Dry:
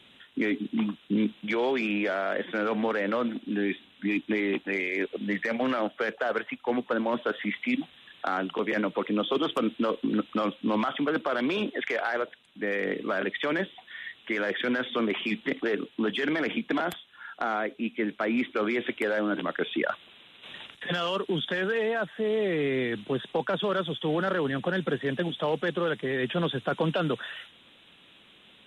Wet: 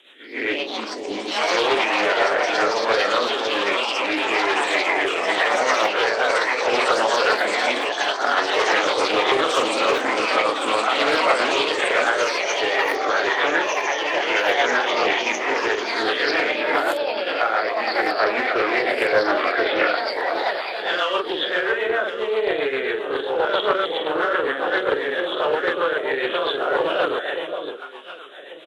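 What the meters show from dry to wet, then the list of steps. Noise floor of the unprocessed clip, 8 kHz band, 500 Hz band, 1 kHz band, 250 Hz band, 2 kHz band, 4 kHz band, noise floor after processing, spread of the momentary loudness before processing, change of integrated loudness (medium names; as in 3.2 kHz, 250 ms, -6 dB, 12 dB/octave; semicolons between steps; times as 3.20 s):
-57 dBFS, no reading, +8.0 dB, +12.5 dB, -2.0 dB, +11.0 dB, +12.5 dB, -31 dBFS, 5 LU, +8.5 dB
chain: reverse spectral sustain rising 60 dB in 0.53 s; doubling 45 ms -2 dB; echo whose repeats swap between lows and highs 571 ms, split 880 Hz, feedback 52%, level -6 dB; rotary cabinet horn 7.5 Hz; high-pass 380 Hz 24 dB/octave; dynamic bell 1.1 kHz, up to +5 dB, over -42 dBFS, Q 0.88; ever faster or slower copies 240 ms, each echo +5 st, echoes 3; loudspeaker Doppler distortion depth 0.15 ms; trim +4 dB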